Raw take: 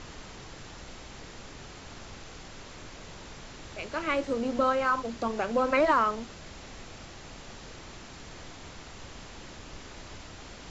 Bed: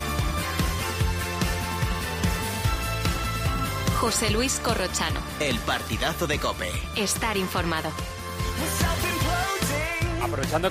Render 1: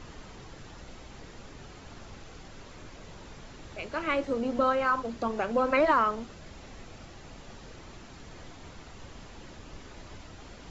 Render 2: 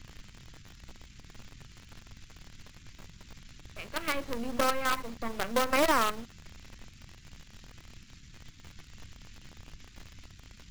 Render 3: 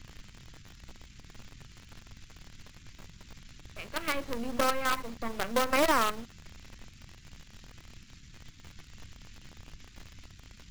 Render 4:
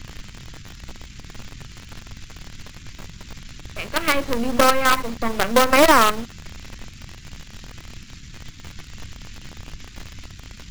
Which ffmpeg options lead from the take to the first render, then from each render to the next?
-af "afftdn=nr=6:nf=-47"
-filter_complex "[0:a]aeval=exprs='if(lt(val(0),0),0.447*val(0),val(0))':c=same,acrossover=split=240|1700[a][b][c];[b]acrusher=bits=5:dc=4:mix=0:aa=0.000001[d];[a][d][c]amix=inputs=3:normalize=0"
-af anull
-af "volume=12dB,alimiter=limit=-3dB:level=0:latency=1"

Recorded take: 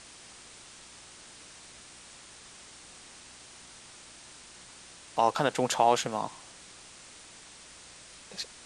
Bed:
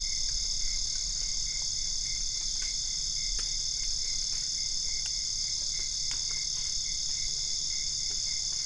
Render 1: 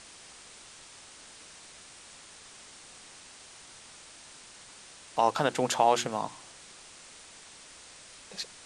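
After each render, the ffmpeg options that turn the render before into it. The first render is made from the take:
-af "bandreject=f=60:t=h:w=4,bandreject=f=120:t=h:w=4,bandreject=f=180:t=h:w=4,bandreject=f=240:t=h:w=4,bandreject=f=300:t=h:w=4,bandreject=f=360:t=h:w=4"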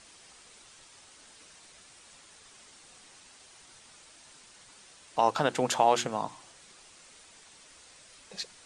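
-af "afftdn=nr=6:nf=-51"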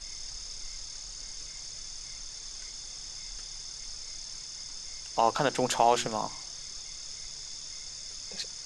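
-filter_complex "[1:a]volume=-10dB[a];[0:a][a]amix=inputs=2:normalize=0"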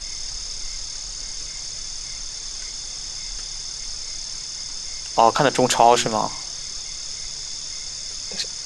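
-af "volume=10dB,alimiter=limit=-2dB:level=0:latency=1"

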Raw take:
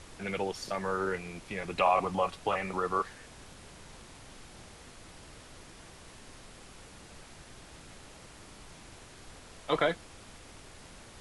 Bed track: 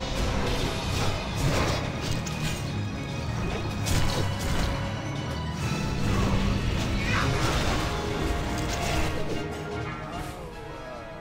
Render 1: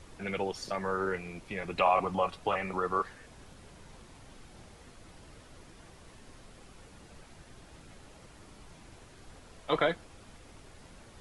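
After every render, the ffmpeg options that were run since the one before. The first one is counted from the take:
-af "afftdn=nr=6:nf=-52"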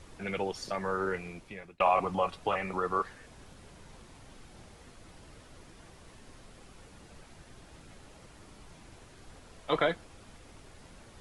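-filter_complex "[0:a]asplit=2[a][b];[a]atrim=end=1.8,asetpts=PTS-STARTPTS,afade=t=out:st=1.27:d=0.53[c];[b]atrim=start=1.8,asetpts=PTS-STARTPTS,afade=t=in:d=0.004:c=hsin[d];[c][d]concat=n=2:v=0:a=1"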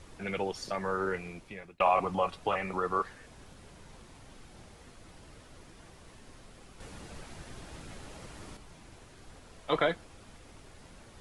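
-filter_complex "[0:a]asettb=1/sr,asplit=3[a][b][c];[a]atrim=end=6.804[d];[b]atrim=start=6.8:end=8.57,asetpts=PTS-STARTPTS,afade=t=in:d=0.004:c=qsin,afade=t=out:st=1.766:d=0.004:c=qsin,acontrast=62[e];[c]atrim=start=8.566[f];[d][e]acrossfade=d=0.004:c1=hsin:c2=qsin[g];[g][f]acrossfade=d=0.004:c1=qsin:c2=hsin"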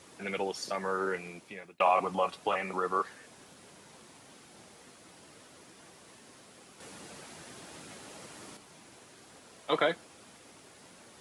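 -af "highpass=190,highshelf=f=5.7k:g=6.5"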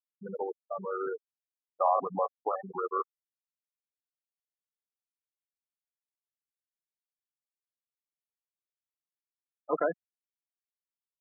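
-af "lowpass=1.6k,afftfilt=real='re*gte(hypot(re,im),0.0708)':imag='im*gte(hypot(re,im),0.0708)':win_size=1024:overlap=0.75"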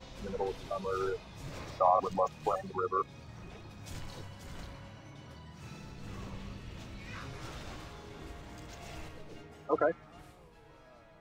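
-filter_complex "[1:a]volume=-19dB[a];[0:a][a]amix=inputs=2:normalize=0"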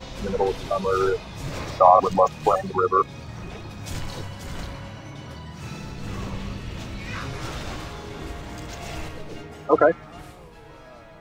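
-af "volume=12dB"

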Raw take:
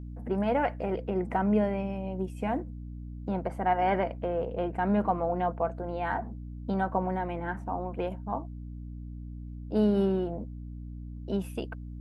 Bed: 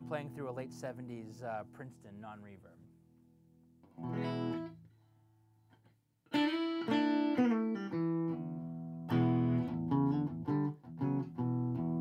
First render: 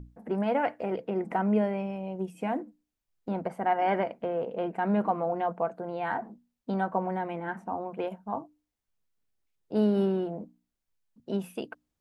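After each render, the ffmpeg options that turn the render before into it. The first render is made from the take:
-af "bandreject=f=60:t=h:w=6,bandreject=f=120:t=h:w=6,bandreject=f=180:t=h:w=6,bandreject=f=240:t=h:w=6,bandreject=f=300:t=h:w=6"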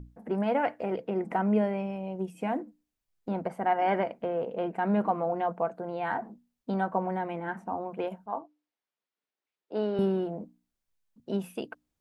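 -filter_complex "[0:a]asettb=1/sr,asplit=3[a][b][c];[a]atrim=end=8.264[d];[b]atrim=start=8.26:end=9.99,asetpts=PTS-STARTPTS,afade=t=in:d=0.004:c=qsin,afade=t=out:st=1.726:d=0.004:c=qsin,highpass=360,lowpass=4.1k[e];[c]atrim=start=9.986[f];[d][e]acrossfade=d=0.004:c1=hsin:c2=qsin[g];[g][f]acrossfade=d=0.004:c1=qsin:c2=hsin"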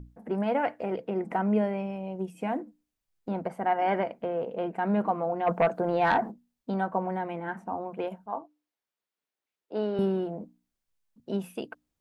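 -filter_complex "[0:a]asplit=3[a][b][c];[a]afade=t=out:st=5.46:d=0.02[d];[b]aeval=exprs='0.158*sin(PI/2*1.78*val(0)/0.158)':c=same,afade=t=in:st=5.46:d=0.02,afade=t=out:st=6.3:d=0.02[e];[c]afade=t=in:st=6.3:d=0.02[f];[d][e][f]amix=inputs=3:normalize=0"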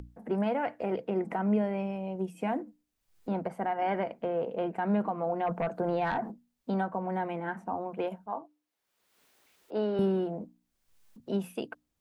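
-filter_complex "[0:a]acrossover=split=180[a][b];[b]alimiter=limit=-21.5dB:level=0:latency=1:release=189[c];[a][c]amix=inputs=2:normalize=0,acompressor=mode=upward:threshold=-46dB:ratio=2.5"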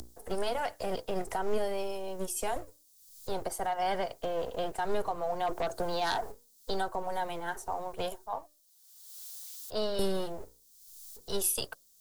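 -filter_complex "[0:a]acrossover=split=410|710[a][b][c];[a]aeval=exprs='abs(val(0))':c=same[d];[c]aexciter=amount=11.6:drive=5.3:freq=3.6k[e];[d][b][e]amix=inputs=3:normalize=0"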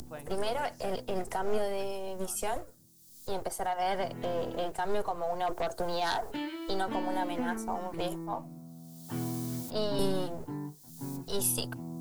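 -filter_complex "[1:a]volume=-5dB[a];[0:a][a]amix=inputs=2:normalize=0"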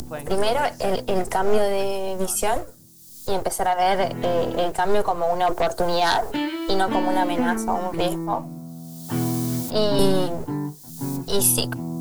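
-af "volume=11dB"

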